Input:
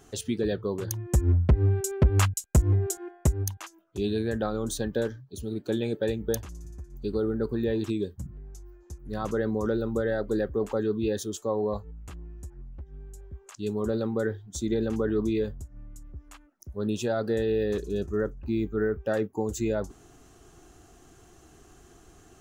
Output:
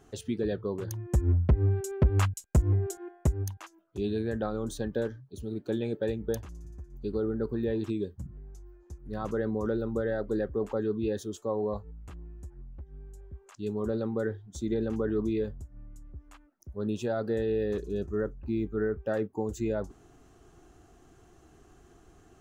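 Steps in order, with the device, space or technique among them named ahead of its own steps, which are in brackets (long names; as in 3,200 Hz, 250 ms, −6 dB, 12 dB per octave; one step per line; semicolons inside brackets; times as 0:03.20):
behind a face mask (high-shelf EQ 3,100 Hz −8 dB)
level −2.5 dB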